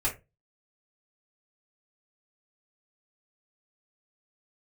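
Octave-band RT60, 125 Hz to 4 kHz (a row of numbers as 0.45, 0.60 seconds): 0.40, 0.30, 0.30, 0.20, 0.20, 0.15 seconds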